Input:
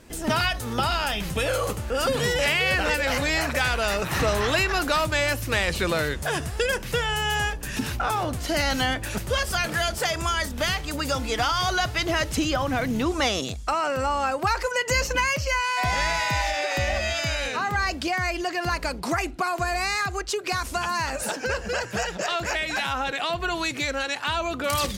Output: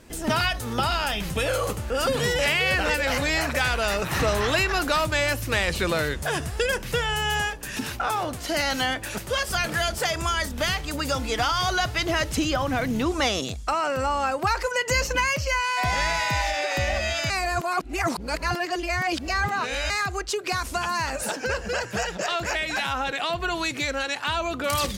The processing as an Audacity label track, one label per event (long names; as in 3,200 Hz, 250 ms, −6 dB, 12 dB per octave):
7.410000	9.500000	low-shelf EQ 170 Hz −9 dB
17.300000	19.900000	reverse